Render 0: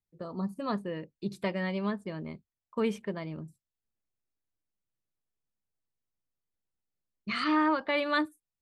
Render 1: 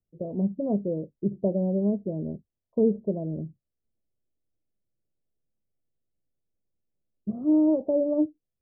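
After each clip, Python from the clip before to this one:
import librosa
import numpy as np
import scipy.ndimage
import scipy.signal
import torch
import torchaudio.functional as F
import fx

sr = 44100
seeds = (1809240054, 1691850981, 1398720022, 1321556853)

y = scipy.signal.sosfilt(scipy.signal.butter(8, 670.0, 'lowpass', fs=sr, output='sos'), x)
y = F.gain(torch.from_numpy(y), 7.5).numpy()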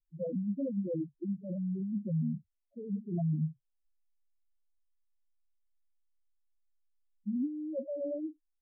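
y = fx.over_compress(x, sr, threshold_db=-31.0, ratio=-1.0)
y = fx.spec_topn(y, sr, count=2)
y = fx.wow_flutter(y, sr, seeds[0], rate_hz=2.1, depth_cents=28.0)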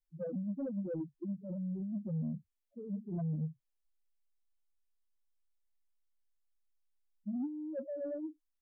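y = 10.0 ** (-27.0 / 20.0) * np.tanh(x / 10.0 ** (-27.0 / 20.0))
y = F.gain(torch.from_numpy(y), -2.5).numpy()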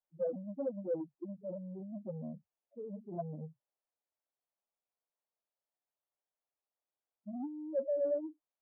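y = fx.bandpass_q(x, sr, hz=660.0, q=1.9)
y = F.gain(torch.from_numpy(y), 8.5).numpy()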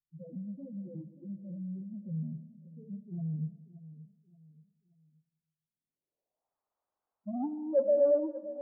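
y = fx.filter_sweep_lowpass(x, sr, from_hz=140.0, to_hz=1100.0, start_s=5.59, end_s=6.57, q=2.1)
y = fx.echo_feedback(y, sr, ms=578, feedback_pct=37, wet_db=-16.0)
y = fx.rev_freeverb(y, sr, rt60_s=1.3, hf_ratio=0.9, predelay_ms=40, drr_db=13.5)
y = F.gain(torch.from_numpy(y), 5.5).numpy()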